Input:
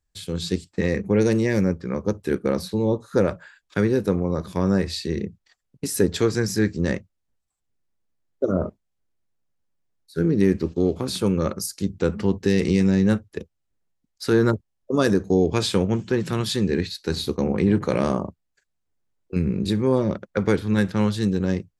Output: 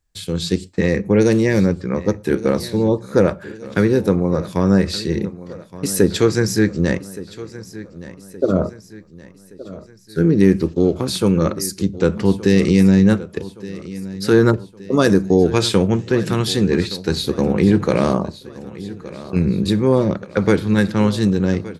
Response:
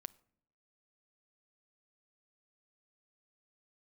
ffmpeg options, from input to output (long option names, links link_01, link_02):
-filter_complex "[0:a]aecho=1:1:1170|2340|3510|4680:0.141|0.0692|0.0339|0.0166,asplit=2[link_01][link_02];[1:a]atrim=start_sample=2205,atrim=end_sample=6174[link_03];[link_02][link_03]afir=irnorm=-1:irlink=0,volume=15.5dB[link_04];[link_01][link_04]amix=inputs=2:normalize=0,volume=-7.5dB"